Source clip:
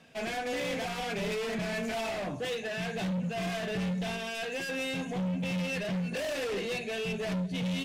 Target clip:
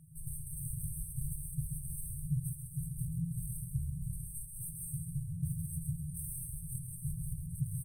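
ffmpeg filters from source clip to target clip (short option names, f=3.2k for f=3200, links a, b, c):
-filter_complex "[0:a]asettb=1/sr,asplit=3[a][b][c];[a]atrim=end=3.654[d];[b]atrim=start=3.65:end=4.13,asetpts=PTS-STARTPTS,afade=t=in:d=0.004:c=qsin,afade=t=out:st=0.476:d=0.004:c=qsin,acrossover=split=5500[e][f];[f]acompressor=threshold=-57dB:ratio=4:attack=1:release=60[g];[e][g]amix=inputs=2:normalize=0[h];[c]atrim=start=4.126[i];[d][h]acrossfade=d=0.004:c1=hsin:c2=qsin[j];[j][i]acrossfade=d=0.004:c1=qsin:c2=hsin,afftfilt=real='re*(1-between(b*sr/4096,170,8200))':imag='im*(1-between(b*sr/4096,170,8200))':win_size=4096:overlap=0.75,asplit=2[k][l];[l]aecho=0:1:134|268|402|536|670:0.447|0.183|0.0751|0.0308|0.0126[m];[k][m]amix=inputs=2:normalize=0,volume=11dB"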